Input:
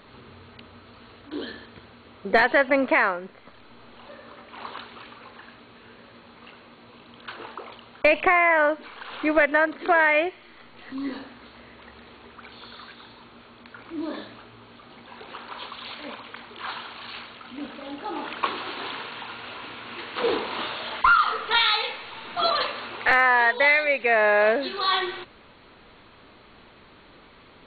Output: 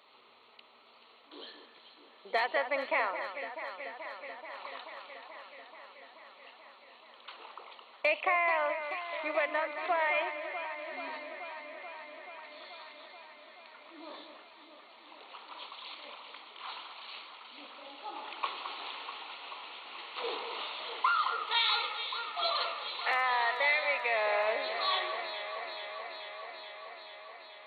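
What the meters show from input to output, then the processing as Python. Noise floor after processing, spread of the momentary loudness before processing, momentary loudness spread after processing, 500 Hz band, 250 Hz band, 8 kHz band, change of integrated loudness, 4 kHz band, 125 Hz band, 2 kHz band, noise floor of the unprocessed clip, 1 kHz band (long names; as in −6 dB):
−59 dBFS, 20 LU, 21 LU, −10.5 dB, −20.5 dB, can't be measured, −11.0 dB, −6.0 dB, below −30 dB, −10.5 dB, −51 dBFS, −8.0 dB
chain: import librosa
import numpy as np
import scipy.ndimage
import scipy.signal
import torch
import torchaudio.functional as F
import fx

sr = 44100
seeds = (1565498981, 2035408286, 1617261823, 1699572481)

y = scipy.signal.sosfilt(scipy.signal.butter(2, 710.0, 'highpass', fs=sr, output='sos'), x)
y = fx.peak_eq(y, sr, hz=1600.0, db=-14.0, octaves=0.33)
y = fx.echo_alternate(y, sr, ms=216, hz=2000.0, feedback_pct=87, wet_db=-8.5)
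y = y * librosa.db_to_amplitude(-6.5)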